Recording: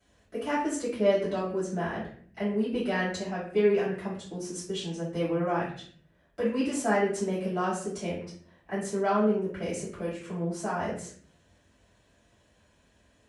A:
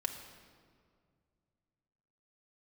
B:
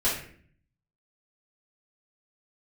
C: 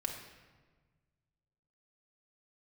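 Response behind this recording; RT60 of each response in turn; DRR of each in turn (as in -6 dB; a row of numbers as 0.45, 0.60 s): B; 2.1, 0.55, 1.4 s; 2.5, -11.0, 0.5 dB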